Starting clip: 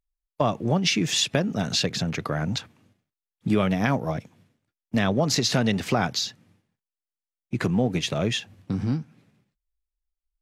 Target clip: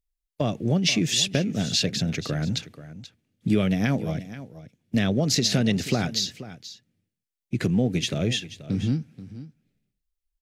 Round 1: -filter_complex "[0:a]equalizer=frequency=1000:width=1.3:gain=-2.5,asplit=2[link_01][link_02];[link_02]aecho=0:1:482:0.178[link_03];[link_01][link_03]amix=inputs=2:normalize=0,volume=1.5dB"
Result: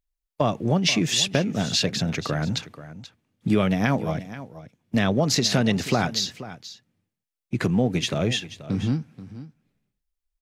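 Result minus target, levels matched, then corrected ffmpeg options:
1,000 Hz band +6.5 dB
-filter_complex "[0:a]equalizer=frequency=1000:width=1.3:gain=-14,asplit=2[link_01][link_02];[link_02]aecho=0:1:482:0.178[link_03];[link_01][link_03]amix=inputs=2:normalize=0,volume=1.5dB"

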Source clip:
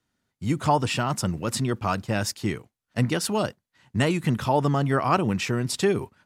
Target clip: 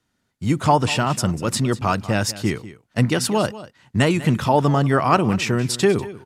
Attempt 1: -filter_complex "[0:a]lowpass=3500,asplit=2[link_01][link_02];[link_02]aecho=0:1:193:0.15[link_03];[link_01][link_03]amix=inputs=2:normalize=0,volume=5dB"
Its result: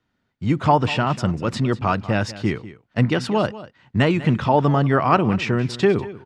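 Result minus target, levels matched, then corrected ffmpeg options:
8,000 Hz band −13.5 dB
-filter_complex "[0:a]lowpass=14000,asplit=2[link_01][link_02];[link_02]aecho=0:1:193:0.15[link_03];[link_01][link_03]amix=inputs=2:normalize=0,volume=5dB"

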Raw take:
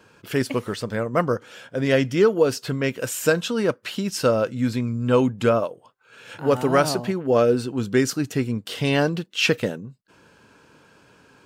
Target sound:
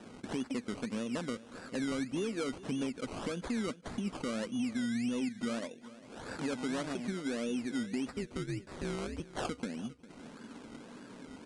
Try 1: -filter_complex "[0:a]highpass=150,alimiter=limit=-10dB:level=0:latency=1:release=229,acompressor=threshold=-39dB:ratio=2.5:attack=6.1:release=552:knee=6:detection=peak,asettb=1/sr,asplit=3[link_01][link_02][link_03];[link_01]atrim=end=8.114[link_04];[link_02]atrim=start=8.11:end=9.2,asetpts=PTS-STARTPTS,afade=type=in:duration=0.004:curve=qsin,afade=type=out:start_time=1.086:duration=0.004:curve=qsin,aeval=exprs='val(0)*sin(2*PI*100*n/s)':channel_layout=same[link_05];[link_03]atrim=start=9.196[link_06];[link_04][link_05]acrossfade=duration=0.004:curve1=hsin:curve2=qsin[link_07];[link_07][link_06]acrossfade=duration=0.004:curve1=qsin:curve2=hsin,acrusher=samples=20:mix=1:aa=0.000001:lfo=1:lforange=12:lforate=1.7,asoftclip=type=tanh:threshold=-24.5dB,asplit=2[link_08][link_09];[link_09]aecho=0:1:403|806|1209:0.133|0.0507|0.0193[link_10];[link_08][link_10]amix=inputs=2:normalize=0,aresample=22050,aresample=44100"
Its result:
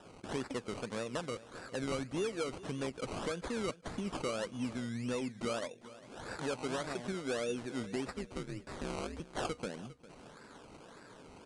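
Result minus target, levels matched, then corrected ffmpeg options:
250 Hz band −3.5 dB
-filter_complex "[0:a]highpass=150,equalizer=frequency=240:width_type=o:width=0.8:gain=14.5,alimiter=limit=-10dB:level=0:latency=1:release=229,acompressor=threshold=-39dB:ratio=2.5:attack=6.1:release=552:knee=6:detection=peak,asettb=1/sr,asplit=3[link_01][link_02][link_03];[link_01]atrim=end=8.114[link_04];[link_02]atrim=start=8.11:end=9.2,asetpts=PTS-STARTPTS,afade=type=in:duration=0.004:curve=qsin,afade=type=out:start_time=1.086:duration=0.004:curve=qsin,aeval=exprs='val(0)*sin(2*PI*100*n/s)':channel_layout=same[link_05];[link_03]atrim=start=9.196[link_06];[link_04][link_05]acrossfade=duration=0.004:curve1=hsin:curve2=qsin[link_07];[link_07][link_06]acrossfade=duration=0.004:curve1=qsin:curve2=hsin,acrusher=samples=20:mix=1:aa=0.000001:lfo=1:lforange=12:lforate=1.7,asoftclip=type=tanh:threshold=-24.5dB,asplit=2[link_08][link_09];[link_09]aecho=0:1:403|806|1209:0.133|0.0507|0.0193[link_10];[link_08][link_10]amix=inputs=2:normalize=0,aresample=22050,aresample=44100"

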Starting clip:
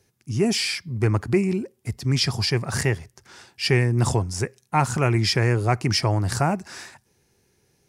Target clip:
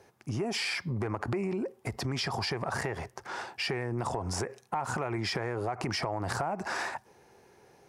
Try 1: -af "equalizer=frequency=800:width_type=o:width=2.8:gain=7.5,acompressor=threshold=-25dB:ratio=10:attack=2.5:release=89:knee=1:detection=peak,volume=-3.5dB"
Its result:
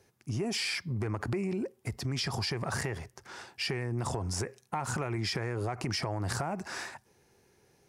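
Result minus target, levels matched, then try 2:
1,000 Hz band −3.5 dB
-af "equalizer=frequency=800:width_type=o:width=2.8:gain=19,acompressor=threshold=-25dB:ratio=10:attack=2.5:release=89:knee=1:detection=peak,volume=-3.5dB"

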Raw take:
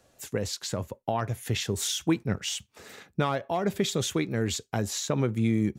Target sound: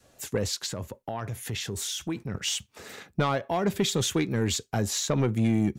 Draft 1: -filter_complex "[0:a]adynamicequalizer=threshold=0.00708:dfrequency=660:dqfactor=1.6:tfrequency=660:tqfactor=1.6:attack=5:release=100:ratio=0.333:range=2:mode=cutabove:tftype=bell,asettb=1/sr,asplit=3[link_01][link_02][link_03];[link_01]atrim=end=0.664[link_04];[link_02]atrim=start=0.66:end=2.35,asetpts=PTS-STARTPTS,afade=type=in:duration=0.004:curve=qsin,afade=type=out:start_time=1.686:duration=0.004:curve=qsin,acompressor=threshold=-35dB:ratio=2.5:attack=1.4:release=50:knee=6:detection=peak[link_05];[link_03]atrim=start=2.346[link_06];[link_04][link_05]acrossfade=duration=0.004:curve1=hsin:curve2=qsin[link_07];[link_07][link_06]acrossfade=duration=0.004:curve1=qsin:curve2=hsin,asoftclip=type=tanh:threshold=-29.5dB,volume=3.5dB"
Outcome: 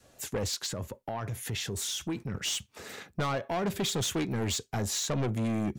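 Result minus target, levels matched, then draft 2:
soft clipping: distortion +10 dB
-filter_complex "[0:a]adynamicequalizer=threshold=0.00708:dfrequency=660:dqfactor=1.6:tfrequency=660:tqfactor=1.6:attack=5:release=100:ratio=0.333:range=2:mode=cutabove:tftype=bell,asettb=1/sr,asplit=3[link_01][link_02][link_03];[link_01]atrim=end=0.664[link_04];[link_02]atrim=start=0.66:end=2.35,asetpts=PTS-STARTPTS,afade=type=in:duration=0.004:curve=qsin,afade=type=out:start_time=1.686:duration=0.004:curve=qsin,acompressor=threshold=-35dB:ratio=2.5:attack=1.4:release=50:knee=6:detection=peak[link_05];[link_03]atrim=start=2.346[link_06];[link_04][link_05]acrossfade=duration=0.004:curve1=hsin:curve2=qsin[link_07];[link_07][link_06]acrossfade=duration=0.004:curve1=qsin:curve2=hsin,asoftclip=type=tanh:threshold=-19.5dB,volume=3.5dB"

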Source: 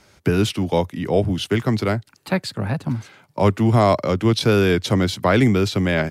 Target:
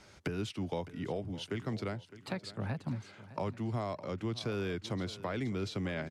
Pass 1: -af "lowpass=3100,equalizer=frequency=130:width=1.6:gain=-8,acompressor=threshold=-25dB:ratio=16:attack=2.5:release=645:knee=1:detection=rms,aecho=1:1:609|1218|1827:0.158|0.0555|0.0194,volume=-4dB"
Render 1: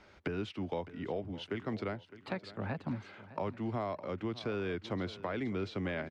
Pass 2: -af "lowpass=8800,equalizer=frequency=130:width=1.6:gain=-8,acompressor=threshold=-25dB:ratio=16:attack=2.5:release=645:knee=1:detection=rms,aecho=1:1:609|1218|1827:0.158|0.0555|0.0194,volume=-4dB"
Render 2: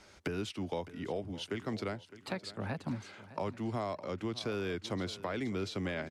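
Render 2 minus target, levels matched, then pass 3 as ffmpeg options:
125 Hz band −3.5 dB
-af "lowpass=8800,acompressor=threshold=-25dB:ratio=16:attack=2.5:release=645:knee=1:detection=rms,aecho=1:1:609|1218|1827:0.158|0.0555|0.0194,volume=-4dB"

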